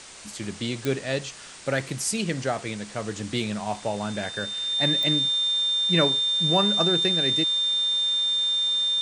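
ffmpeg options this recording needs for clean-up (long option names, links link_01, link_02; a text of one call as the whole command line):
ffmpeg -i in.wav -af "adeclick=threshold=4,bandreject=frequency=3600:width=30,afftdn=noise_reduction=30:noise_floor=-41" out.wav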